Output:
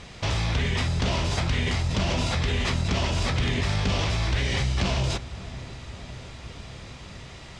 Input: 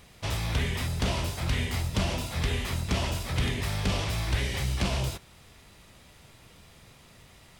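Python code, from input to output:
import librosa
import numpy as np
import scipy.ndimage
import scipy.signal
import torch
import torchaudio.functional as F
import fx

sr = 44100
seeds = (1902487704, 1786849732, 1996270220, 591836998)

p1 = scipy.signal.sosfilt(scipy.signal.butter(4, 7100.0, 'lowpass', fs=sr, output='sos'), x)
p2 = fx.over_compress(p1, sr, threshold_db=-35.0, ratio=-1.0)
p3 = p1 + (p2 * librosa.db_to_amplitude(2.0))
y = fx.echo_filtered(p3, sr, ms=560, feedback_pct=74, hz=1200.0, wet_db=-16)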